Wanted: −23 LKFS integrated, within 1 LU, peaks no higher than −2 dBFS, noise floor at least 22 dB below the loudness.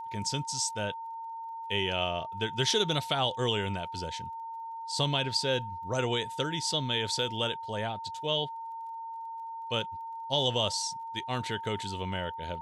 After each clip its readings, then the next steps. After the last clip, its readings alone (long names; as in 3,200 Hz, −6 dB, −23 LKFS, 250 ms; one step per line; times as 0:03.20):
crackle rate 26 per second; interfering tone 910 Hz; level of the tone −37 dBFS; integrated loudness −31.5 LKFS; sample peak −12.5 dBFS; target loudness −23.0 LKFS
→ click removal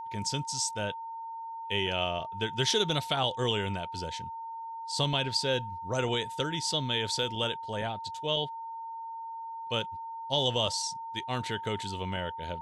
crackle rate 0.24 per second; interfering tone 910 Hz; level of the tone −37 dBFS
→ notch filter 910 Hz, Q 30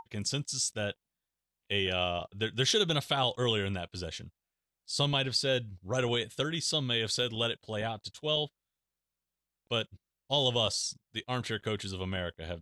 interfering tone none found; integrated loudness −31.5 LKFS; sample peak −13.5 dBFS; target loudness −23.0 LKFS
→ level +8.5 dB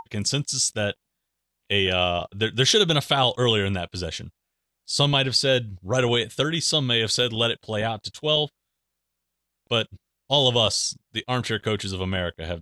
integrated loudness −23.0 LKFS; sample peak −5.0 dBFS; background noise floor −81 dBFS